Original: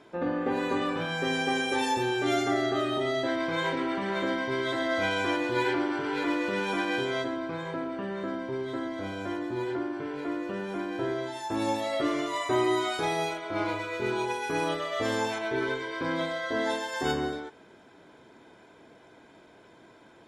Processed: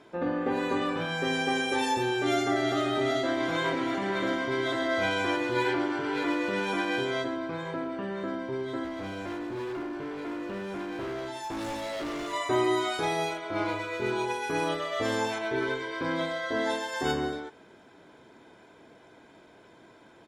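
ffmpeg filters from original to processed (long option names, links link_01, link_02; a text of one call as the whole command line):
ffmpeg -i in.wav -filter_complex "[0:a]asplit=2[link_01][link_02];[link_02]afade=type=in:start_time=2.17:duration=0.01,afade=type=out:start_time=2.78:duration=0.01,aecho=0:1:390|780|1170|1560|1950|2340|2730|3120|3510|3900|4290|4680:0.398107|0.318486|0.254789|0.203831|0.163065|0.130452|0.104361|0.0834891|0.0667913|0.053433|0.0427464|0.0341971[link_03];[link_01][link_03]amix=inputs=2:normalize=0,asettb=1/sr,asplit=3[link_04][link_05][link_06];[link_04]atrim=end=8.844[link_07];[link_05]atrim=start=8.84:end=12.33,asetpts=PTS-STARTPTS,afade=type=in:duration=0.004:curve=qsin,afade=type=out:start_time=3.486:duration=0.004:curve=qsin,asoftclip=type=hard:threshold=-32dB[link_08];[link_06]atrim=start=12.326[link_09];[link_07][link_08]acrossfade=duration=0.004:curve1=hsin:curve2=qsin[link_10];[link_10][link_09]acrossfade=duration=0.004:curve1=qsin:curve2=hsin" out.wav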